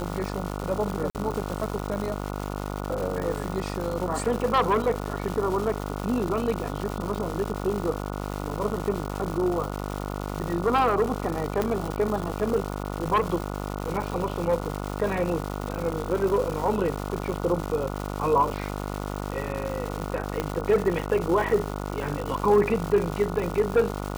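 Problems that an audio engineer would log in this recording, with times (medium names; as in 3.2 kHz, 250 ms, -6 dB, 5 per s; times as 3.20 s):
buzz 50 Hz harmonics 29 -32 dBFS
crackle 380 per s -30 dBFS
1.10–1.15 s: dropout 48 ms
11.62 s: pop -12 dBFS
20.40 s: pop -13 dBFS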